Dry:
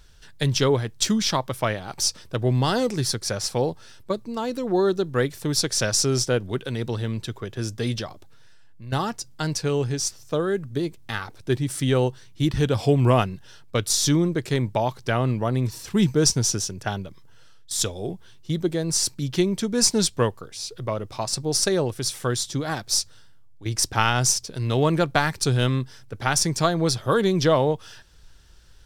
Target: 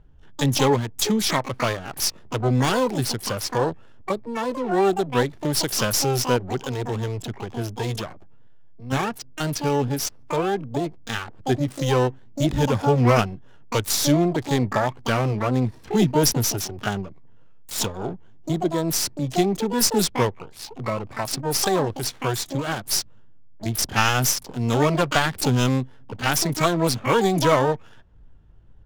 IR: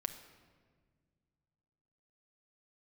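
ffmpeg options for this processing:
-filter_complex "[0:a]adynamicsmooth=sensitivity=7.5:basefreq=750,asplit=2[s0][s1];[s1]asetrate=88200,aresample=44100,atempo=0.5,volume=0.562[s2];[s0][s2]amix=inputs=2:normalize=0"

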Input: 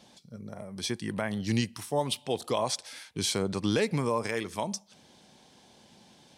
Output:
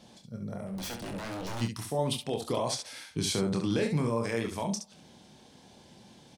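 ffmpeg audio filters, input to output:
-filter_complex "[0:a]lowshelf=f=430:g=6,alimiter=limit=0.106:level=0:latency=1:release=82,asplit=3[s0][s1][s2];[s0]afade=t=out:st=0.65:d=0.02[s3];[s1]aeval=exprs='0.0251*(abs(mod(val(0)/0.0251+3,4)-2)-1)':c=same,afade=t=in:st=0.65:d=0.02,afade=t=out:st=1.6:d=0.02[s4];[s2]afade=t=in:st=1.6:d=0.02[s5];[s3][s4][s5]amix=inputs=3:normalize=0,asplit=2[s6][s7];[s7]aecho=0:1:26|69:0.501|0.447[s8];[s6][s8]amix=inputs=2:normalize=0,volume=0.841"

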